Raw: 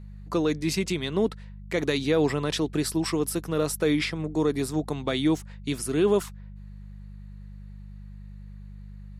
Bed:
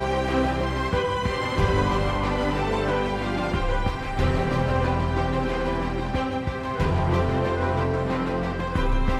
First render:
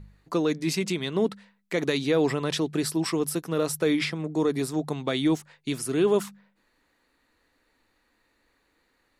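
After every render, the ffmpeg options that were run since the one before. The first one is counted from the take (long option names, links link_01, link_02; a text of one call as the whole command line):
ffmpeg -i in.wav -af "bandreject=frequency=50:width_type=h:width=4,bandreject=frequency=100:width_type=h:width=4,bandreject=frequency=150:width_type=h:width=4,bandreject=frequency=200:width_type=h:width=4" out.wav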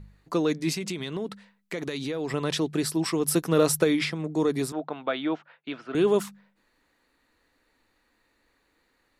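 ffmpeg -i in.wav -filter_complex "[0:a]asettb=1/sr,asplit=3[link_01][link_02][link_03];[link_01]atrim=end=0.734[link_04];[link_02]atrim=start=0.73:end=2.34,asetpts=PTS-STARTPTS,afade=type=in:duration=0.004:curve=qsin,afade=type=out:start_time=1.606:duration=0.004:curve=qsin,acompressor=threshold=-28dB:ratio=4:attack=3.2:release=140:knee=1:detection=peak[link_05];[link_03]atrim=start=2.336[link_06];[link_04][link_05]acrossfade=duration=0.004:curve1=hsin:curve2=qsin[link_07];[link_07][link_06]acrossfade=duration=0.004:curve1=qsin:curve2=hsin,asplit=3[link_08][link_09][link_10];[link_08]afade=type=out:start_time=3.27:duration=0.02[link_11];[link_09]acontrast=36,afade=type=in:start_time=3.27:duration=0.02,afade=type=out:start_time=3.83:duration=0.02[link_12];[link_10]afade=type=in:start_time=3.83:duration=0.02[link_13];[link_11][link_12][link_13]amix=inputs=3:normalize=0,asettb=1/sr,asplit=3[link_14][link_15][link_16];[link_14]atrim=end=4.724[link_17];[link_15]atrim=start=4.72:end=5.95,asetpts=PTS-STARTPTS,afade=type=in:duration=0.004:curve=qsin,afade=type=out:start_time=1.226:duration=0.004:curve=qsin,highpass=340,equalizer=frequency=390:width_type=q:width=4:gain=-6,equalizer=frequency=650:width_type=q:width=4:gain=4,equalizer=frequency=1400:width_type=q:width=4:gain=7,equalizer=frequency=2000:width_type=q:width=4:gain=-4,lowpass=frequency=3100:width=0.5412,lowpass=frequency=3100:width=1.3066[link_18];[link_16]atrim=start=5.946[link_19];[link_17][link_18]acrossfade=duration=0.004:curve1=hsin:curve2=qsin[link_20];[link_20][link_19]acrossfade=duration=0.004:curve1=qsin:curve2=hsin" out.wav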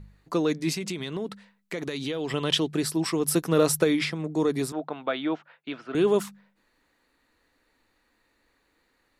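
ffmpeg -i in.wav -filter_complex "[0:a]asettb=1/sr,asplit=3[link_01][link_02][link_03];[link_01]atrim=end=2.064[link_04];[link_02]atrim=start=2.06:end=2.66,asetpts=PTS-STARTPTS,afade=type=in:duration=0.004:curve=qsin,afade=type=out:start_time=0.596:duration=0.004:curve=qsin,equalizer=frequency=3100:width_type=o:width=0.25:gain=14[link_05];[link_03]atrim=start=2.656[link_06];[link_04][link_05]acrossfade=duration=0.004:curve1=hsin:curve2=qsin[link_07];[link_07][link_06]acrossfade=duration=0.004:curve1=qsin:curve2=hsin" out.wav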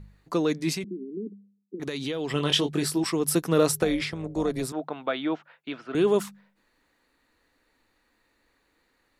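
ffmpeg -i in.wav -filter_complex "[0:a]asettb=1/sr,asplit=3[link_01][link_02][link_03];[link_01]atrim=end=0.844[link_04];[link_02]atrim=start=0.84:end=1.8,asetpts=PTS-STARTPTS,afade=type=in:duration=0.004:curve=qsin,afade=type=out:start_time=0.956:duration=0.004:curve=qsin,asuperpass=centerf=280:order=12:qfactor=1.2[link_05];[link_03]atrim=start=1.796[link_06];[link_04][link_05]acrossfade=duration=0.004:curve1=hsin:curve2=qsin[link_07];[link_07][link_06]acrossfade=duration=0.004:curve1=qsin:curve2=hsin,asettb=1/sr,asplit=3[link_08][link_09][link_10];[link_08]atrim=end=2.334[link_11];[link_09]atrim=start=2.33:end=3.04,asetpts=PTS-STARTPTS,afade=type=in:duration=0.004:curve=qsin,afade=type=out:start_time=0.706:duration=0.004:curve=qsin,asplit=2[link_12][link_13];[link_13]adelay=21,volume=-5dB[link_14];[link_12][link_14]amix=inputs=2:normalize=0,atrim=end_sample=31311[link_15];[link_10]atrim=start=3.036[link_16];[link_11][link_15]acrossfade=duration=0.004:curve1=hsin:curve2=qsin[link_17];[link_17][link_16]acrossfade=duration=0.004:curve1=qsin:curve2=hsin,asettb=1/sr,asplit=3[link_18][link_19][link_20];[link_18]atrim=end=3.714[link_21];[link_19]atrim=start=3.71:end=4.65,asetpts=PTS-STARTPTS,afade=type=in:duration=0.004:curve=qsin,afade=type=out:start_time=0.936:duration=0.004:curve=qsin,tremolo=f=260:d=0.519[link_22];[link_20]atrim=start=4.646[link_23];[link_21][link_22]acrossfade=duration=0.004:curve1=hsin:curve2=qsin[link_24];[link_24][link_23]acrossfade=duration=0.004:curve1=qsin:curve2=hsin" out.wav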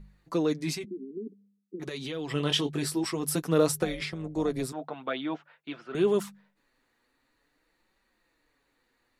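ffmpeg -i in.wav -af "flanger=delay=5:depth=3.5:regen=-25:speed=0.5:shape=triangular" out.wav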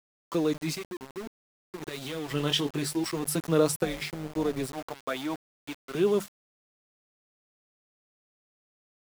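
ffmpeg -i in.wav -af "aeval=exprs='val(0)*gte(abs(val(0)),0.0141)':channel_layout=same" out.wav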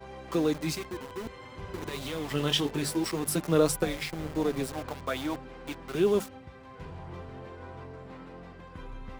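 ffmpeg -i in.wav -i bed.wav -filter_complex "[1:a]volume=-20dB[link_01];[0:a][link_01]amix=inputs=2:normalize=0" out.wav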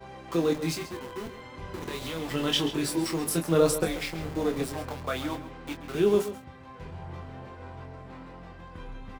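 ffmpeg -i in.wav -filter_complex "[0:a]asplit=2[link_01][link_02];[link_02]adelay=24,volume=-6dB[link_03];[link_01][link_03]amix=inputs=2:normalize=0,asplit=2[link_04][link_05];[link_05]adelay=134.1,volume=-12dB,highshelf=frequency=4000:gain=-3.02[link_06];[link_04][link_06]amix=inputs=2:normalize=0" out.wav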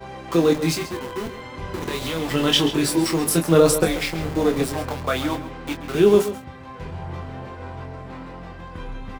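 ffmpeg -i in.wav -af "volume=8dB,alimiter=limit=-3dB:level=0:latency=1" out.wav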